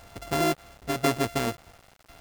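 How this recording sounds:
a buzz of ramps at a fixed pitch in blocks of 64 samples
tremolo saw down 0.96 Hz, depth 55%
a quantiser's noise floor 8 bits, dither none

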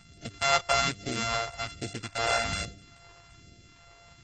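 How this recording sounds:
a buzz of ramps at a fixed pitch in blocks of 64 samples
phaser sweep stages 2, 1.2 Hz, lowest notch 220–1,000 Hz
AAC

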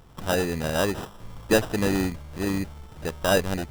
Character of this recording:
aliases and images of a low sample rate 2,200 Hz, jitter 0%

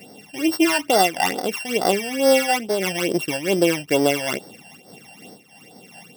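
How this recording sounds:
a buzz of ramps at a fixed pitch in blocks of 16 samples
phaser sweep stages 12, 2.3 Hz, lowest notch 370–2,600 Hz
amplitude modulation by smooth noise

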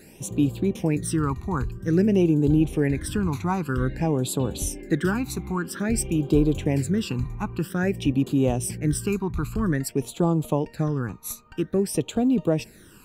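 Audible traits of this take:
phaser sweep stages 12, 0.51 Hz, lowest notch 530–1,900 Hz

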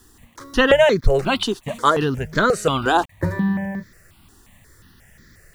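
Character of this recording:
a quantiser's noise floor 10 bits, dither none
notches that jump at a steady rate 5.6 Hz 590–2,800 Hz

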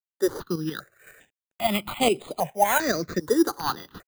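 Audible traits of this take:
aliases and images of a low sample rate 5,400 Hz, jitter 0%
tremolo saw up 7.2 Hz, depth 60%
a quantiser's noise floor 12 bits, dither none
notches that jump at a steady rate 2.5 Hz 670–5,700 Hz

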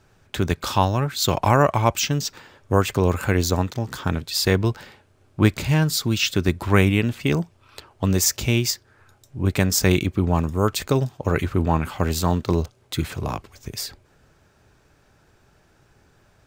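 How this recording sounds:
background noise floor −59 dBFS
spectral slope −5.0 dB per octave

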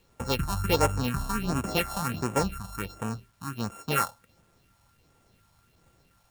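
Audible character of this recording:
a buzz of ramps at a fixed pitch in blocks of 32 samples
phaser sweep stages 4, 1.4 Hz, lowest notch 360–4,300 Hz
a quantiser's noise floor 12 bits, dither none

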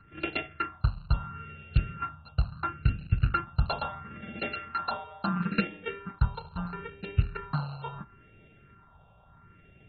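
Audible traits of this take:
a buzz of ramps at a fixed pitch in blocks of 32 samples
phaser sweep stages 4, 0.74 Hz, lowest notch 320–1,100 Hz
AAC

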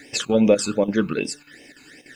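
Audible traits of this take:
chopped level 3.4 Hz, depth 65%, duty 85%
a quantiser's noise floor 12 bits, dither triangular
phaser sweep stages 12, 2.6 Hz, lowest notch 570–1,400 Hz

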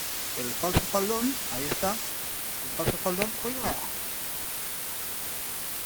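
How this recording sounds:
aliases and images of a low sample rate 6,700 Hz, jitter 0%
tremolo saw down 3.3 Hz, depth 70%
a quantiser's noise floor 6 bits, dither triangular
Opus

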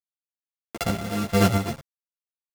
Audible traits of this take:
a buzz of ramps at a fixed pitch in blocks of 64 samples
chopped level 1.5 Hz, depth 60%, duty 35%
a quantiser's noise floor 8 bits, dither none
a shimmering, thickened sound

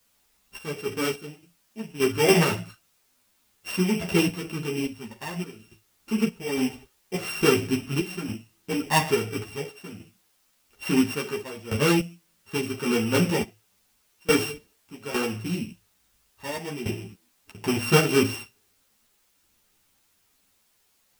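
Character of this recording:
a buzz of ramps at a fixed pitch in blocks of 16 samples
sample-and-hold tremolo, depth 95%
a quantiser's noise floor 12 bits, dither triangular
a shimmering, thickened sound

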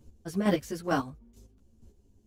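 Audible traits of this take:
chopped level 2.2 Hz, depth 60%, duty 20%
a shimmering, thickened sound

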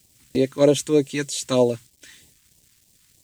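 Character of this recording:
a quantiser's noise floor 10 bits, dither none
phaser sweep stages 2, 3.2 Hz, lowest notch 580–1,400 Hz

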